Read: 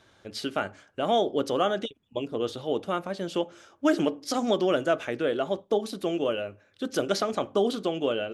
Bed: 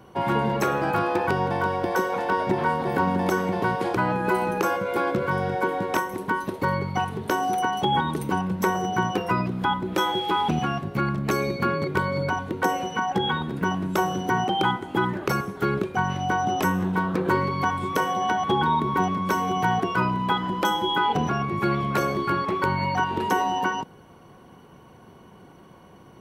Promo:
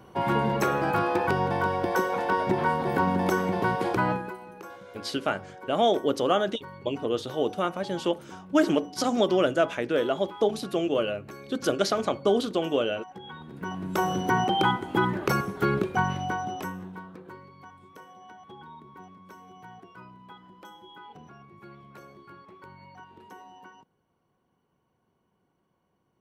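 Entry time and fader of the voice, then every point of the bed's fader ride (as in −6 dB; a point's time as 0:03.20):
4.70 s, +1.5 dB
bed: 0:04.12 −1.5 dB
0:04.37 −19.5 dB
0:13.21 −19.5 dB
0:14.11 −0.5 dB
0:16.01 −0.5 dB
0:17.41 −24.5 dB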